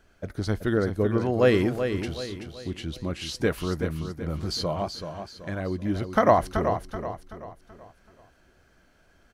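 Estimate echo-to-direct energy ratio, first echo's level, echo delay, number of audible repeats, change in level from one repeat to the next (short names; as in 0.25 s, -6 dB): -7.0 dB, -8.0 dB, 0.38 s, 4, -8.0 dB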